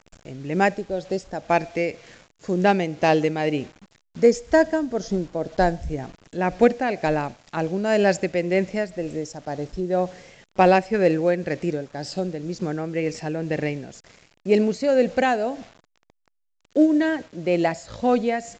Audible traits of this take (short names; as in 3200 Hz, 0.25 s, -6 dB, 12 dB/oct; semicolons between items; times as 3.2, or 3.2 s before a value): a quantiser's noise floor 8-bit, dither none; tremolo triangle 2 Hz, depth 50%; A-law